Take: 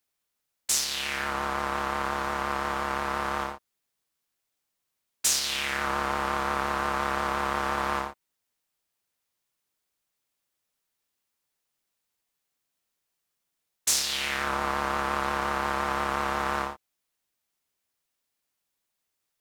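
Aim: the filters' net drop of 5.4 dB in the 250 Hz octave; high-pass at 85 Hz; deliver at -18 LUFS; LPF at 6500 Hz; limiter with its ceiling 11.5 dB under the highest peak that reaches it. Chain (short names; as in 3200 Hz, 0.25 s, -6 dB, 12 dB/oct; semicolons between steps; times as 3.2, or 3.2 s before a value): HPF 85 Hz; LPF 6500 Hz; bell 250 Hz -8 dB; gain +16.5 dB; limiter -5.5 dBFS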